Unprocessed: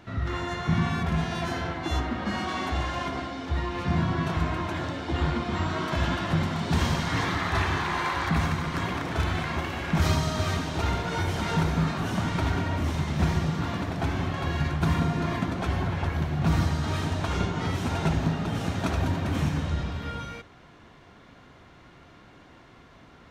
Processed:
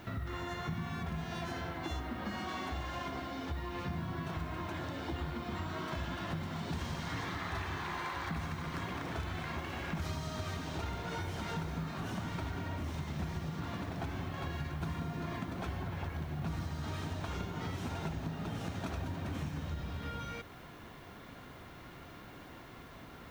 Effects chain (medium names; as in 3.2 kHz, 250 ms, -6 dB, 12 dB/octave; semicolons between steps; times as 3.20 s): compression 4:1, threshold -39 dBFS, peak gain reduction 16.5 dB; added noise violet -69 dBFS; trim +1 dB